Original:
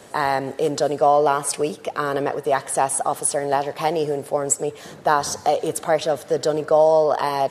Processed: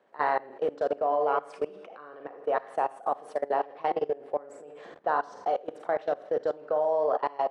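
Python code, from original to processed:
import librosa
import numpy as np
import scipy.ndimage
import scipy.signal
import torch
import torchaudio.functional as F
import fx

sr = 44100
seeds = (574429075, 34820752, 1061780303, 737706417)

y = fx.bandpass_edges(x, sr, low_hz=300.0, high_hz=2000.0)
y = fx.echo_feedback(y, sr, ms=80, feedback_pct=55, wet_db=-17.5)
y = fx.rev_schroeder(y, sr, rt60_s=0.34, comb_ms=31, drr_db=5.5)
y = fx.level_steps(y, sr, step_db=21)
y = F.gain(torch.from_numpy(y), -4.0).numpy()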